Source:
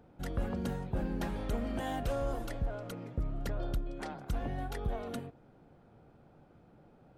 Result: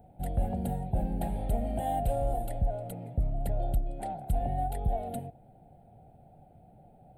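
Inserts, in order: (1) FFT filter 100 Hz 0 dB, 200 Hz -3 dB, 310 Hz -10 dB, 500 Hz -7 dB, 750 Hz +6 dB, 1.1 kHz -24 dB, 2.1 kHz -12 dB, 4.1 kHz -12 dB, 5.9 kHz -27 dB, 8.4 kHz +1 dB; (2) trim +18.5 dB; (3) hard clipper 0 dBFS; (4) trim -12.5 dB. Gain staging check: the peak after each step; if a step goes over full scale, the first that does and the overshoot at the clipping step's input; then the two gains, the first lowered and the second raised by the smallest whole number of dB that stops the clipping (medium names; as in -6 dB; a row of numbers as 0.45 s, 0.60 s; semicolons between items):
-24.0 dBFS, -5.5 dBFS, -5.5 dBFS, -18.0 dBFS; nothing clips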